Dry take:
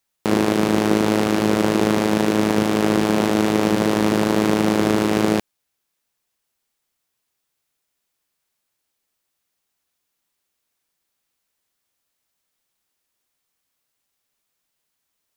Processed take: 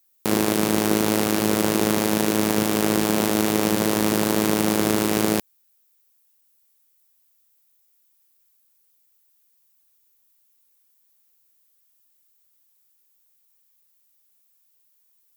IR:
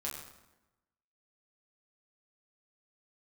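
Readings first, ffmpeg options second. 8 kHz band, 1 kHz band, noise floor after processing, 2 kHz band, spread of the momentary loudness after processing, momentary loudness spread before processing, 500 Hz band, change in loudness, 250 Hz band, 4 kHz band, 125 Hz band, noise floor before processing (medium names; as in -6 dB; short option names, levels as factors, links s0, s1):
+5.5 dB, -3.0 dB, -64 dBFS, -2.0 dB, 1 LU, 1 LU, -3.5 dB, -2.0 dB, -3.5 dB, +0.5 dB, -3.5 dB, -77 dBFS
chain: -af "aemphasis=mode=production:type=50fm,volume=0.708"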